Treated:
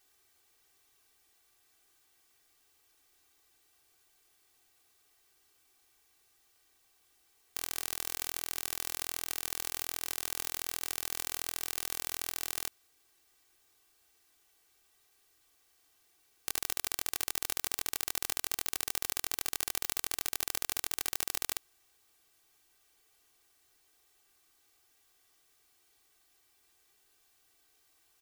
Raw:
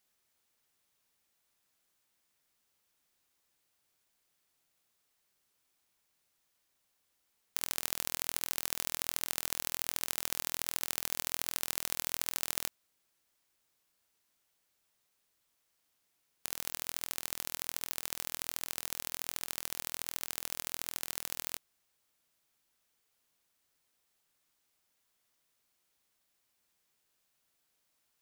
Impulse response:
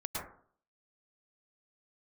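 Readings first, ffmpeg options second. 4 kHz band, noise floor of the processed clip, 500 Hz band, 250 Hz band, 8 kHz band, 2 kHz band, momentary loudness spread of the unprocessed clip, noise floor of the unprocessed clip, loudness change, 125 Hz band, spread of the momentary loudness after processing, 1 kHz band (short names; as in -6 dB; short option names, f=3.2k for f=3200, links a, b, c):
+1.0 dB, -70 dBFS, +1.0 dB, 0.0 dB, +1.0 dB, +1.5 dB, 4 LU, -78 dBFS, +1.0 dB, -1.0 dB, 2 LU, +1.0 dB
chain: -af "aeval=exprs='(mod(4.47*val(0)+1,2)-1)/4.47':c=same,aecho=1:1:2.6:0.98,volume=5.5dB"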